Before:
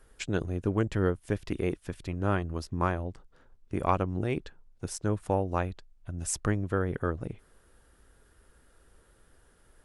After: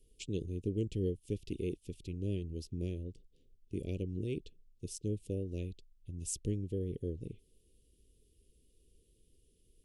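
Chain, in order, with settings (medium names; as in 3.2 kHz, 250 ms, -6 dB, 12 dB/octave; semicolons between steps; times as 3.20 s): elliptic band-stop 440–2800 Hz, stop band 50 dB; trim -6 dB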